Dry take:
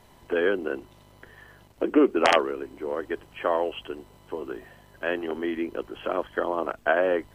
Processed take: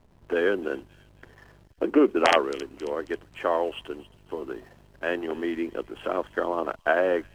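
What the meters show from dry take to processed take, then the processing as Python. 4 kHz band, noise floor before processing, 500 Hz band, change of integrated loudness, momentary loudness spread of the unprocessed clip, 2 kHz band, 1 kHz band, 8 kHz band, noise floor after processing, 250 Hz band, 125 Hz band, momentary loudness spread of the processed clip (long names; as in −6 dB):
0.0 dB, −55 dBFS, 0.0 dB, 0.0 dB, 16 LU, 0.0 dB, 0.0 dB, +0.5 dB, −56 dBFS, 0.0 dB, 0.0 dB, 16 LU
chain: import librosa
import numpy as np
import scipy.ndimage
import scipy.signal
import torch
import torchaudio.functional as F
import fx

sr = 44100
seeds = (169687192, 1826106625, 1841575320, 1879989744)

y = fx.backlash(x, sr, play_db=-45.5)
y = fx.echo_wet_highpass(y, sr, ms=270, feedback_pct=45, hz=4300.0, wet_db=-9.5)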